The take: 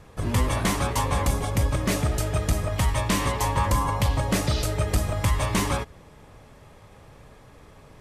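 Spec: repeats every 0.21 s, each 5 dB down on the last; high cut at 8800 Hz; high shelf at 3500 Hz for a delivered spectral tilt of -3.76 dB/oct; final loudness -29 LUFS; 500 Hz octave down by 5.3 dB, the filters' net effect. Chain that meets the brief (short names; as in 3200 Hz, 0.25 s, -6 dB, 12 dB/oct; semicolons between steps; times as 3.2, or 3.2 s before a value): LPF 8800 Hz; bell 500 Hz -7 dB; high shelf 3500 Hz +8 dB; feedback echo 0.21 s, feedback 56%, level -5 dB; gain -6 dB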